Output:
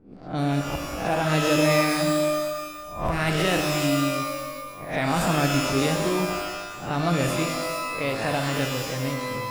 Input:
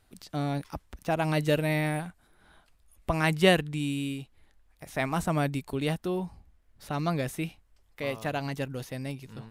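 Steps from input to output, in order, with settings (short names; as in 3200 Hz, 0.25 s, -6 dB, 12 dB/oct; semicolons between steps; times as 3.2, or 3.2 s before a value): spectral swells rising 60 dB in 0.44 s; limiter -18.5 dBFS, peak gain reduction 10.5 dB; low-pass opened by the level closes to 770 Hz, open at -26 dBFS; shimmer reverb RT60 1.4 s, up +12 st, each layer -2 dB, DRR 4.5 dB; gain +3.5 dB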